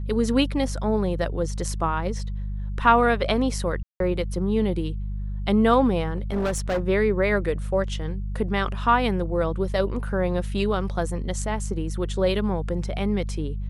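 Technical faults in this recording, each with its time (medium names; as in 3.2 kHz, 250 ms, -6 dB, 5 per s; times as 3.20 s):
hum 50 Hz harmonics 4 -29 dBFS
3.83–4.00 s: dropout 172 ms
6.16–6.82 s: clipped -20.5 dBFS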